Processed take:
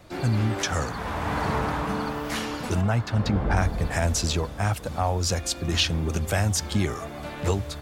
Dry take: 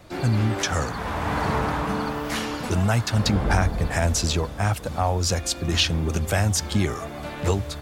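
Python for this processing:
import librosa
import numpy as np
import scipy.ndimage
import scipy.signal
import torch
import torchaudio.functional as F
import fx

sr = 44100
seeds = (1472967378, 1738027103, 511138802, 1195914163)

y = fx.peak_eq(x, sr, hz=11000.0, db=-13.5, octaves=2.3, at=(2.81, 3.57))
y = F.gain(torch.from_numpy(y), -2.0).numpy()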